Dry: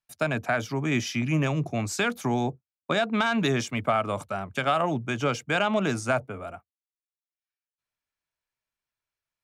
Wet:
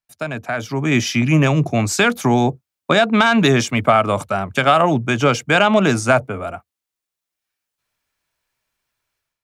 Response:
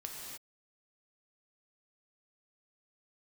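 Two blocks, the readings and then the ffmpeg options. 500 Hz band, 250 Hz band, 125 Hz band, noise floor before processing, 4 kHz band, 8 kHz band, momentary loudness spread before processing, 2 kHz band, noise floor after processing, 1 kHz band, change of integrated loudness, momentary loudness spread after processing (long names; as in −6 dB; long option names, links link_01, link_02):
+10.0 dB, +10.0 dB, +10.0 dB, below −85 dBFS, +10.5 dB, +10.5 dB, 7 LU, +10.0 dB, −85 dBFS, +10.5 dB, +10.5 dB, 11 LU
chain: -af "dynaudnorm=framelen=510:gausssize=3:maxgain=14dB"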